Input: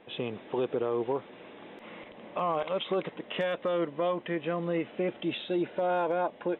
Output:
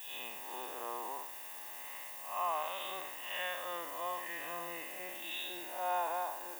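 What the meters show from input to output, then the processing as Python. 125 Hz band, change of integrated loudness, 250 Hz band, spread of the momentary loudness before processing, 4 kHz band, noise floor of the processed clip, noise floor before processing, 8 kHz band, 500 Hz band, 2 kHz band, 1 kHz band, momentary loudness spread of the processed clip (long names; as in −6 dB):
−27.0 dB, −7.5 dB, −21.5 dB, 17 LU, −3.0 dB, −47 dBFS, −51 dBFS, can't be measured, −14.5 dB, −2.0 dB, −3.0 dB, 8 LU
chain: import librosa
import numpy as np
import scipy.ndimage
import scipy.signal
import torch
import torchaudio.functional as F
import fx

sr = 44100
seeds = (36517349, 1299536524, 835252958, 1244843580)

y = fx.spec_blur(x, sr, span_ms=176.0)
y = fx.dmg_noise_colour(y, sr, seeds[0], colour='violet', level_db=-49.0)
y = scipy.signal.sosfilt(scipy.signal.butter(2, 820.0, 'highpass', fs=sr, output='sos'), y)
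y = y + 0.58 * np.pad(y, (int(1.1 * sr / 1000.0), 0))[:len(y)]
y = y + 10.0 ** (-22.5 / 20.0) * np.pad(y, (int(792 * sr / 1000.0), 0))[:len(y)]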